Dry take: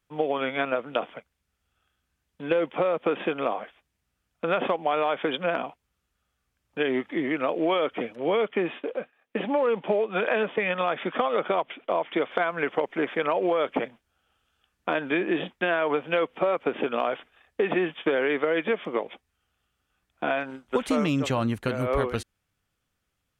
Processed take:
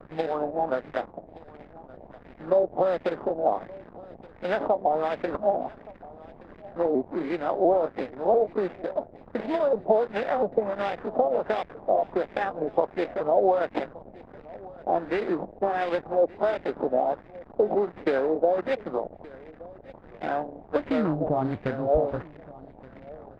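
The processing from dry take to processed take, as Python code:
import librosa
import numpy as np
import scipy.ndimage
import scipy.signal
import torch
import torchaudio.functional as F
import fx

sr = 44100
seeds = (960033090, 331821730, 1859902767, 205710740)

y = fx.pitch_ramps(x, sr, semitones=3.0, every_ms=695)
y = fx.band_shelf(y, sr, hz=1700.0, db=-9.0, octaves=1.7)
y = fx.dmg_noise_band(y, sr, seeds[0], low_hz=170.0, high_hz=820.0, level_db=-44.0)
y = fx.sample_hold(y, sr, seeds[1], rate_hz=4300.0, jitter_pct=20)
y = fx.backlash(y, sr, play_db=-35.5)
y = fx.filter_lfo_lowpass(y, sr, shape='sine', hz=1.4, low_hz=650.0, high_hz=2200.0, q=2.6)
y = y + 10.0 ** (-21.5 / 20.0) * np.pad(y, (int(1173 * sr / 1000.0), 0))[:len(y)]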